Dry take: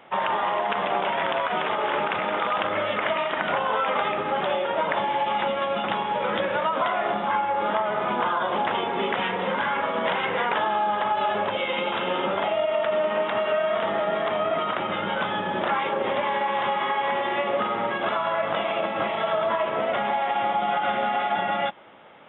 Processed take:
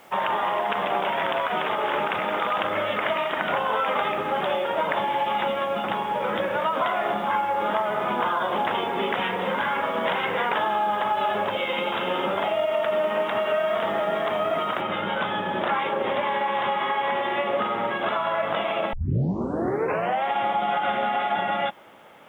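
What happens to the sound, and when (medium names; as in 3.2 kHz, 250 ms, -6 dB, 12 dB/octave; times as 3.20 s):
5.62–6.60 s: treble shelf 3.5 kHz -7 dB
14.81 s: noise floor step -60 dB -69 dB
18.93 s: tape start 1.32 s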